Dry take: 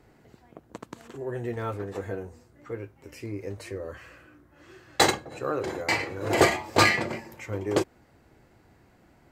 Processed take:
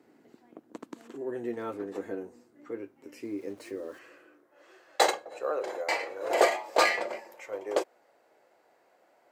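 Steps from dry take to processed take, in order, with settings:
0:03.23–0:03.99: centre clipping without the shift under −49.5 dBFS
high-pass filter sweep 270 Hz → 560 Hz, 0:03.77–0:04.69
level −5.5 dB

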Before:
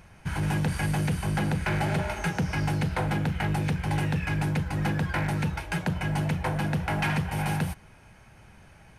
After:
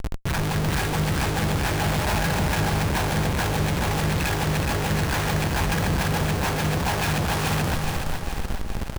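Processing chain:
comb filter 1.2 ms, depth 79%
comparator with hysteresis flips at −41 dBFS
on a send: echo with a time of its own for lows and highs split 620 Hz, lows 267 ms, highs 420 ms, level −4 dB

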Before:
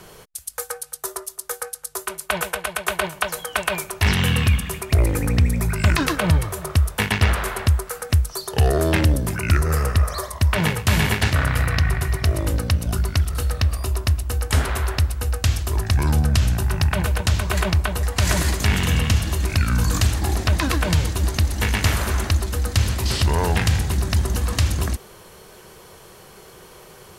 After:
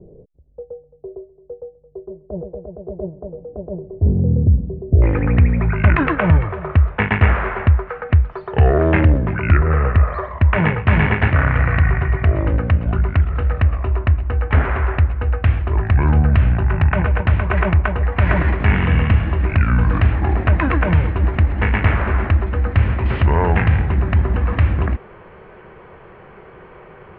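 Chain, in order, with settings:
Butterworth low-pass 530 Hz 36 dB per octave, from 0:05.01 2,400 Hz
level +4.5 dB

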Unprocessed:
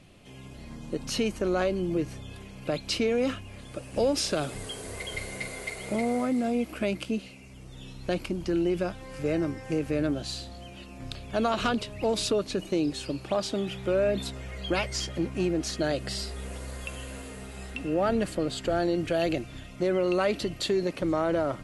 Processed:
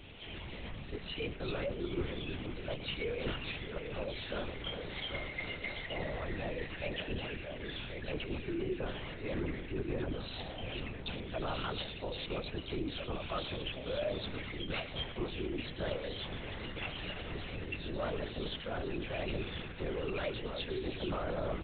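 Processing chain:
every frequency bin delayed by itself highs early, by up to 101 ms
high-shelf EQ 2,400 Hz +11.5 dB
reversed playback
downward compressor 5 to 1, threshold −38 dBFS, peak gain reduction 19 dB
reversed playback
delay with pitch and tempo change per echo 256 ms, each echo −2 semitones, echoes 2, each echo −6 dB
single-tap delay 112 ms −16 dB
on a send at −11 dB: convolution reverb RT60 0.20 s, pre-delay 3 ms
on the sum: linear-prediction vocoder at 8 kHz whisper
level +1 dB

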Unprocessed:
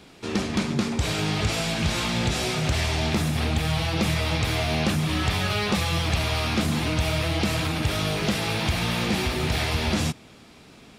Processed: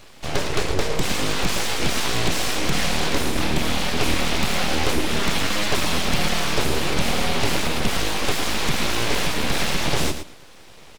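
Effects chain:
repeating echo 112 ms, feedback 15%, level −9 dB
full-wave rectification
level +5 dB

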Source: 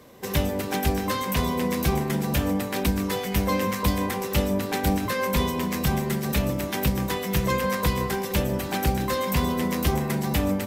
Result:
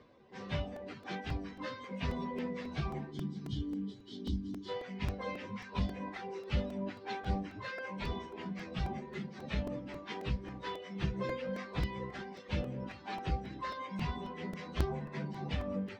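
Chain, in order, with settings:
gain on a spectral selection 0:02.07–0:03.13, 440–2,900 Hz −24 dB
reverb reduction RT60 1.1 s
low-pass filter 4,900 Hz 24 dB per octave
high-shelf EQ 3,700 Hz −5.5 dB
time stretch by phase vocoder 1.5×
delay with a band-pass on its return 199 ms, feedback 79%, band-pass 1,300 Hz, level −20.5 dB
regular buffer underruns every 0.27 s, samples 128, repeat, from 0:00.76
level −8 dB

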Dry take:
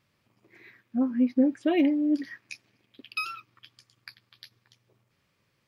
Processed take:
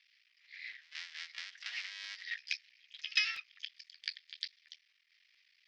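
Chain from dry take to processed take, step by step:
sub-harmonics by changed cycles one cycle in 3, muted
dynamic equaliser 2,700 Hz, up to −4 dB, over −47 dBFS, Q 1.8
downward compressor 10 to 1, threshold −32 dBFS, peak gain reduction 14.5 dB
pitch-shifted copies added +12 semitones −12 dB
Chebyshev band-pass filter 1,900–5,300 Hz, order 3
echo ahead of the sound 134 ms −22 dB
regular buffer underruns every 0.66 s, samples 128, repeat, from 0:00.72
level +9.5 dB

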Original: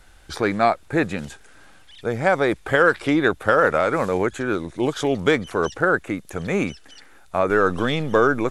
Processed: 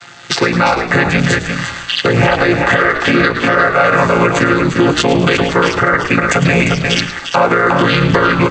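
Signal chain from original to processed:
channel vocoder with a chord as carrier minor triad, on A#2
tilt shelving filter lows −9 dB
downward compressor 4 to 1, threshold −38 dBFS, peak gain reduction 17.5 dB
transient designer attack +2 dB, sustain −5 dB
parametric band 3,500 Hz +3.5 dB 2.8 octaves
echo with shifted repeats 107 ms, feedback 37%, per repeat −56 Hz, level −13.5 dB
automatic gain control gain up to 9 dB
single-tap delay 350 ms −8.5 dB
boost into a limiter +21.5 dB
level −1 dB

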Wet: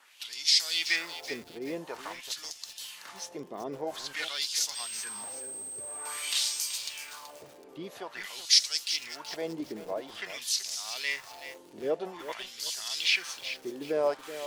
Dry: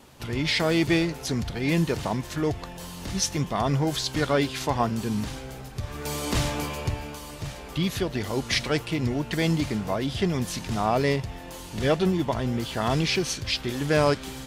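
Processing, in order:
RIAA equalisation recording
auto-filter band-pass sine 0.49 Hz 350–5,500 Hz
high-shelf EQ 7,600 Hz +6 dB
0:04.74–0:06.77: steady tone 8,300 Hz −37 dBFS
feedback echo at a low word length 378 ms, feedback 35%, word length 7 bits, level −11 dB

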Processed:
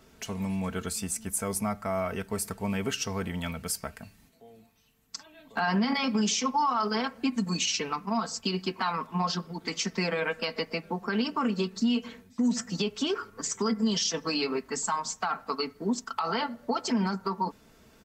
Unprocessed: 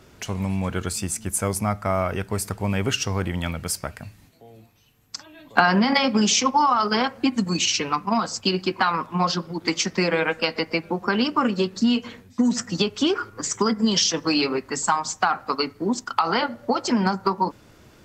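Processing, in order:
high-shelf EQ 12,000 Hz +7.5 dB
comb filter 4.5 ms, depth 53%
brickwall limiter −11.5 dBFS, peak gain reduction 9.5 dB
level −7 dB

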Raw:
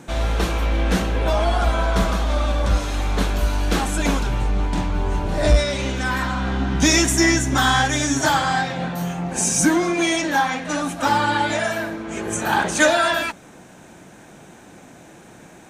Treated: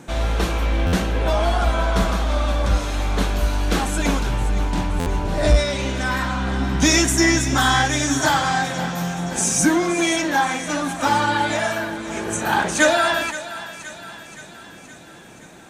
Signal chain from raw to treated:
feedback echo with a high-pass in the loop 522 ms, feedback 62%, high-pass 770 Hz, level −12.5 dB
buffer that repeats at 0:00.86/0:04.99, samples 512, times 5

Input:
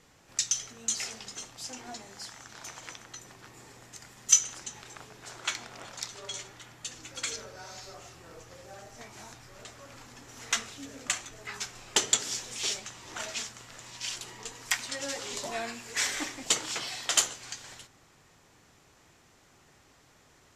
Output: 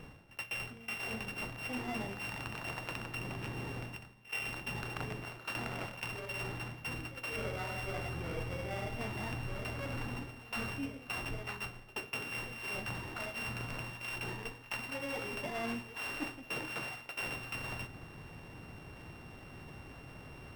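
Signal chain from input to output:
samples sorted by size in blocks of 16 samples
notch filter 6,800 Hz, Q 30
reversed playback
downward compressor 12 to 1, threshold −44 dBFS, peak gain reduction 29.5 dB
reversed playback
bass and treble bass +6 dB, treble −12 dB
echo ahead of the sound 77 ms −19.5 dB
level +10 dB

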